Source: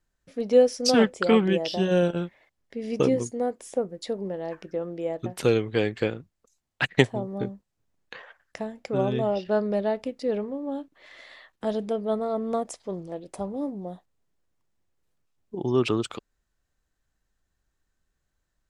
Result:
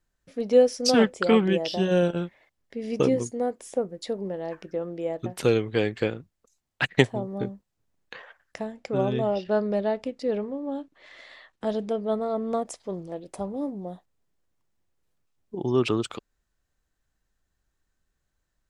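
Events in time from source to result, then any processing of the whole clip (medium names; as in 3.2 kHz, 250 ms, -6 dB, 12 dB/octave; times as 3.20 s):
8.71–12.66 s: low-pass 9.3 kHz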